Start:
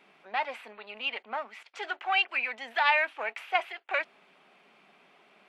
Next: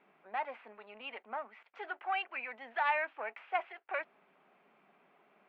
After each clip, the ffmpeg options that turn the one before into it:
ffmpeg -i in.wav -af "lowpass=1800,volume=-5dB" out.wav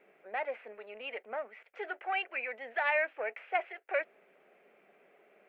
ffmpeg -i in.wav -af "equalizer=frequency=125:width_type=o:width=1:gain=-10,equalizer=frequency=250:width_type=o:width=1:gain=-5,equalizer=frequency=500:width_type=o:width=1:gain=9,equalizer=frequency=1000:width_type=o:width=1:gain=-12,equalizer=frequency=2000:width_type=o:width=1:gain=4,equalizer=frequency=4000:width_type=o:width=1:gain=-7,volume=4.5dB" out.wav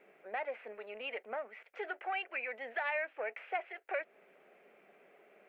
ffmpeg -i in.wav -af "acompressor=threshold=-38dB:ratio=2,volume=1dB" out.wav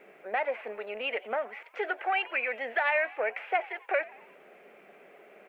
ffmpeg -i in.wav -filter_complex "[0:a]asplit=5[link_01][link_02][link_03][link_04][link_05];[link_02]adelay=89,afreqshift=110,volume=-21dB[link_06];[link_03]adelay=178,afreqshift=220,volume=-26.5dB[link_07];[link_04]adelay=267,afreqshift=330,volume=-32dB[link_08];[link_05]adelay=356,afreqshift=440,volume=-37.5dB[link_09];[link_01][link_06][link_07][link_08][link_09]amix=inputs=5:normalize=0,volume=8.5dB" out.wav

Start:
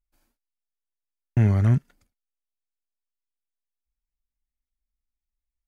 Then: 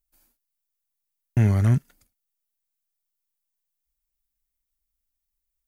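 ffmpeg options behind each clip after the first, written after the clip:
ffmpeg -i in.wav -af "aemphasis=mode=production:type=50kf" out.wav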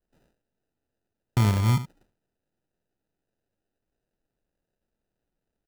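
ffmpeg -i in.wav -af "aecho=1:1:75:0.224,acrusher=samples=40:mix=1:aa=0.000001,volume=-2.5dB" out.wav

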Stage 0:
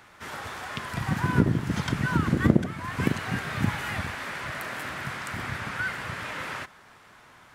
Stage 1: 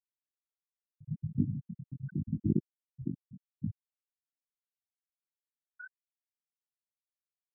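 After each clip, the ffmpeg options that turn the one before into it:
ffmpeg -i in.wav -af "afftfilt=real='re*gte(hypot(re,im),0.501)':imag='im*gte(hypot(re,im),0.501)':win_size=1024:overlap=0.75,flanger=delay=19:depth=4.1:speed=0.81,afftfilt=real='re*lt(b*sr/1024,370*pow(3700/370,0.5+0.5*sin(2*PI*3.8*pts/sr)))':imag='im*lt(b*sr/1024,370*pow(3700/370,0.5+0.5*sin(2*PI*3.8*pts/sr)))':win_size=1024:overlap=0.75,volume=-4.5dB" out.wav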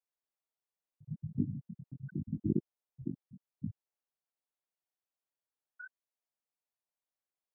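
ffmpeg -i in.wav -af "equalizer=frequency=670:width=0.67:gain=11,volume=-5.5dB" out.wav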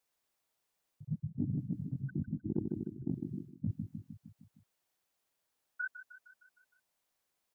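ffmpeg -i in.wav -af "aecho=1:1:154|308|462|616|770|924:0.224|0.128|0.0727|0.0415|0.0236|0.0135,areverse,acompressor=threshold=-44dB:ratio=6,areverse,volume=11.5dB" out.wav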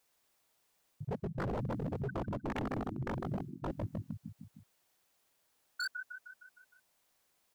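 ffmpeg -i in.wav -af "aeval=exprs='0.0126*(abs(mod(val(0)/0.0126+3,4)-2)-1)':channel_layout=same,volume=7.5dB" out.wav

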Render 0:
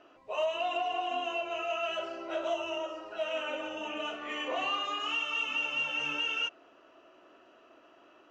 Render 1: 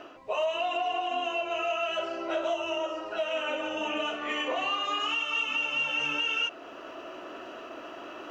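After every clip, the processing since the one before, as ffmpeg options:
ffmpeg -i in.wav -af "areverse,acompressor=mode=upward:threshold=-40dB:ratio=2.5,areverse,alimiter=level_in=5dB:limit=-24dB:level=0:latency=1:release=450,volume=-5dB,volume=8dB" out.wav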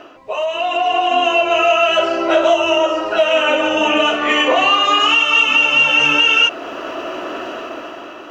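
ffmpeg -i in.wav -af "dynaudnorm=framelen=240:gausssize=7:maxgain=9.5dB,volume=7dB" out.wav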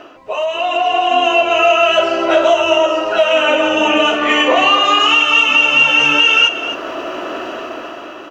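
ffmpeg -i in.wav -af "aecho=1:1:262:0.251,volume=1.5dB" out.wav

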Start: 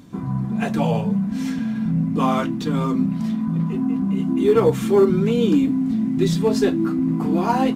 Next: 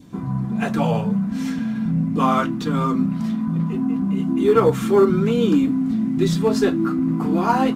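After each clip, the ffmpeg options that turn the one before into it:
ffmpeg -i in.wav -af "adynamicequalizer=threshold=0.00891:dfrequency=1300:dqfactor=2.6:tfrequency=1300:tqfactor=2.6:attack=5:release=100:ratio=0.375:range=3.5:mode=boostabove:tftype=bell" out.wav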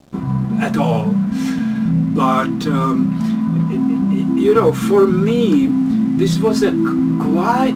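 ffmpeg -i in.wav -filter_complex "[0:a]asplit=2[link_01][link_02];[link_02]alimiter=limit=-14.5dB:level=0:latency=1:release=171,volume=0dB[link_03];[link_01][link_03]amix=inputs=2:normalize=0,aeval=exprs='sgn(val(0))*max(abs(val(0))-0.0112,0)':channel_layout=same" out.wav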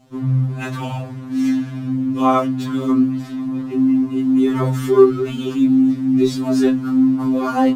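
ffmpeg -i in.wav -af "afftfilt=real='re*2.45*eq(mod(b,6),0)':imag='im*2.45*eq(mod(b,6),0)':win_size=2048:overlap=0.75,volume=-2dB" out.wav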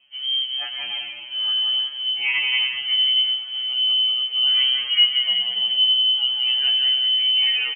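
ffmpeg -i in.wav -af "lowpass=frequency=2800:width_type=q:width=0.5098,lowpass=frequency=2800:width_type=q:width=0.6013,lowpass=frequency=2800:width_type=q:width=0.9,lowpass=frequency=2800:width_type=q:width=2.563,afreqshift=-3300,aecho=1:1:180|288|352.8|391.7|415:0.631|0.398|0.251|0.158|0.1,volume=-6.5dB" out.wav

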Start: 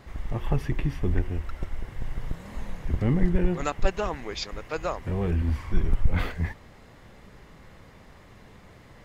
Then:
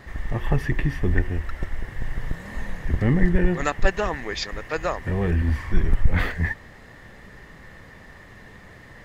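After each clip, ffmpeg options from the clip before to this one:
ffmpeg -i in.wav -af "equalizer=frequency=1800:width=7.8:gain=14,volume=3.5dB" out.wav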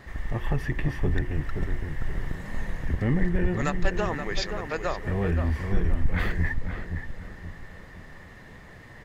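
ffmpeg -i in.wav -filter_complex "[0:a]asplit=2[link_01][link_02];[link_02]alimiter=limit=-16dB:level=0:latency=1:release=244,volume=-1dB[link_03];[link_01][link_03]amix=inputs=2:normalize=0,asoftclip=type=hard:threshold=-6.5dB,asplit=2[link_04][link_05];[link_05]adelay=524,lowpass=frequency=1300:poles=1,volume=-5.5dB,asplit=2[link_06][link_07];[link_07]adelay=524,lowpass=frequency=1300:poles=1,volume=0.4,asplit=2[link_08][link_09];[link_09]adelay=524,lowpass=frequency=1300:poles=1,volume=0.4,asplit=2[link_10][link_11];[link_11]adelay=524,lowpass=frequency=1300:poles=1,volume=0.4,asplit=2[link_12][link_13];[link_13]adelay=524,lowpass=frequency=1300:poles=1,volume=0.4[link_14];[link_04][link_06][link_08][link_10][link_12][link_14]amix=inputs=6:normalize=0,volume=-8dB" out.wav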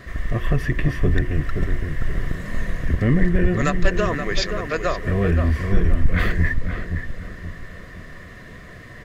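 ffmpeg -i in.wav -af "asuperstop=centerf=850:order=8:qfactor=4.1,volume=6.5dB" out.wav

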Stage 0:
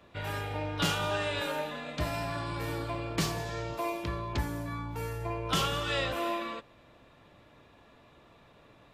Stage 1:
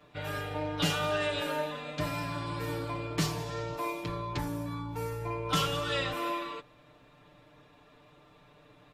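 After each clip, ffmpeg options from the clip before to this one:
ffmpeg -i in.wav -af "aecho=1:1:6.7:0.89,volume=-3dB" out.wav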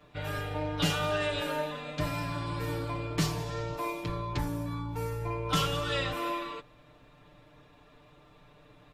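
ffmpeg -i in.wav -af "lowshelf=frequency=72:gain=9.5" out.wav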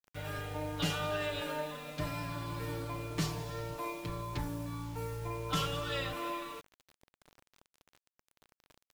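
ffmpeg -i in.wav -af "acrusher=bits=7:mix=0:aa=0.000001,volume=-5dB" out.wav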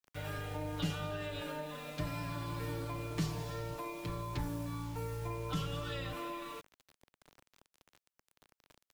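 ffmpeg -i in.wav -filter_complex "[0:a]acrossover=split=330[link_01][link_02];[link_02]acompressor=threshold=-40dB:ratio=6[link_03];[link_01][link_03]amix=inputs=2:normalize=0" out.wav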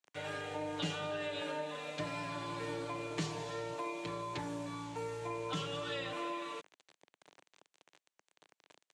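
ffmpeg -i in.wav -af "highpass=230,equalizer=frequency=240:width_type=q:width=4:gain=-8,equalizer=frequency=1300:width_type=q:width=4:gain=-4,equalizer=frequency=5100:width_type=q:width=4:gain=-5,lowpass=frequency=8100:width=0.5412,lowpass=frequency=8100:width=1.3066,volume=3.5dB" out.wav

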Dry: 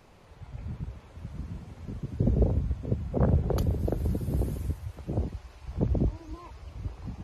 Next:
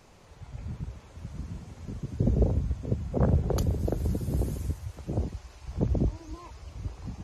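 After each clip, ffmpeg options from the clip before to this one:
ffmpeg -i in.wav -af "equalizer=frequency=6700:width=1.2:gain=7.5" out.wav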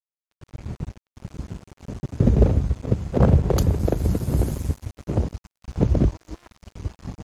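ffmpeg -i in.wav -af "aeval=exprs='sgn(val(0))*max(abs(val(0))-0.00891,0)':channel_layout=same,volume=8.5dB" out.wav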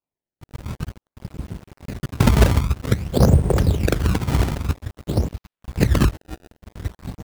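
ffmpeg -i in.wav -af "acrusher=samples=23:mix=1:aa=0.000001:lfo=1:lforange=36.8:lforate=0.51,volume=2dB" out.wav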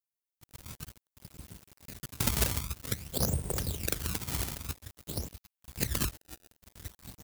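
ffmpeg -i in.wav -af "crystalizer=i=7:c=0,volume=-18dB" out.wav

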